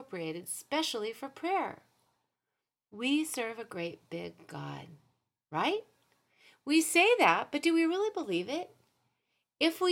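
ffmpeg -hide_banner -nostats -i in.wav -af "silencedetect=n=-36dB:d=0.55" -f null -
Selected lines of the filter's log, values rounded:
silence_start: 1.74
silence_end: 3.00 | silence_duration: 1.26
silence_start: 4.81
silence_end: 5.53 | silence_duration: 0.72
silence_start: 5.79
silence_end: 6.67 | silence_duration: 0.88
silence_start: 8.63
silence_end: 9.61 | silence_duration: 0.98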